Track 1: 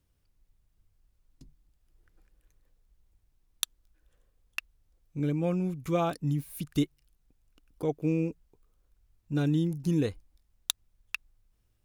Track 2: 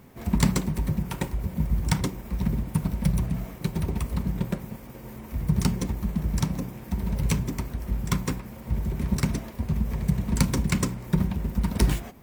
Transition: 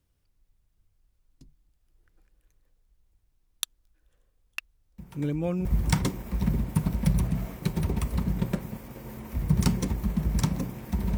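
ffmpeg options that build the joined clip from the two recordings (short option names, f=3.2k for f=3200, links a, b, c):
-filter_complex "[1:a]asplit=2[a][b];[0:a]apad=whole_dur=11.17,atrim=end=11.17,atrim=end=5.652[c];[b]atrim=start=1.638:end=7.16[d];[a]atrim=start=0.97:end=1.64,asetpts=PTS-STARTPTS,volume=-16.5dB,afade=t=in:d=0.004:c=hsin,afade=t=out:st=0.666:d=0.004:c=hsin,adelay=4980[e];[c][d]acrossfade=d=0.004:c1=hsin:c2=hsin[f];[f][e]amix=inputs=2:normalize=0"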